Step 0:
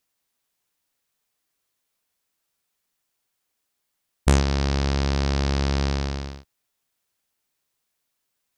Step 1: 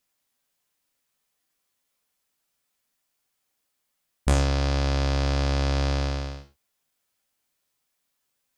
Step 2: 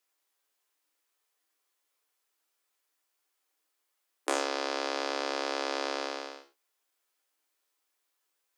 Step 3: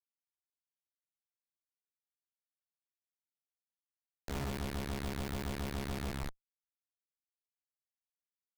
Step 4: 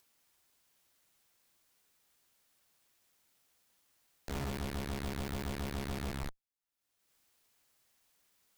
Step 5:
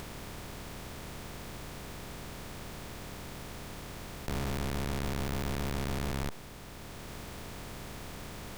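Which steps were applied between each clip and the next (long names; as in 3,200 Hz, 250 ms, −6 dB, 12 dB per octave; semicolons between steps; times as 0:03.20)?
reverb whose tail is shaped and stops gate 140 ms falling, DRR 3.5 dB; in parallel at −0.5 dB: brickwall limiter −16 dBFS, peak gain reduction 10 dB; on the sum: level −7 dB
Chebyshev high-pass with heavy ripple 290 Hz, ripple 3 dB
in parallel at +2 dB: brickwall limiter −22 dBFS, peak gain reduction 11 dB; on the sum: frequency shifter −350 Hz; comparator with hysteresis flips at −27.5 dBFS; level −2 dB
upward compression, threshold −53 dBFS
compressor on every frequency bin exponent 0.2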